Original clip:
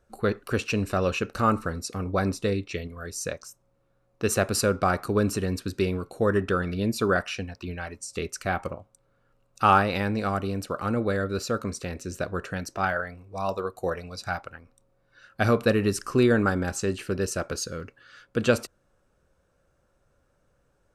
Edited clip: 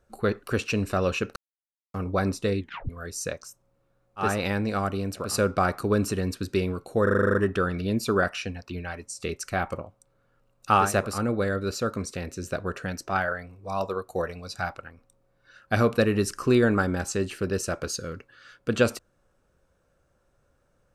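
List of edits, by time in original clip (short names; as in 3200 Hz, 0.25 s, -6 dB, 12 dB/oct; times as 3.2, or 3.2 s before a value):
1.36–1.94 mute
2.6 tape stop 0.29 s
4.28–4.53 swap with 9.78–10.78, crossfade 0.24 s
6.28 stutter 0.04 s, 9 plays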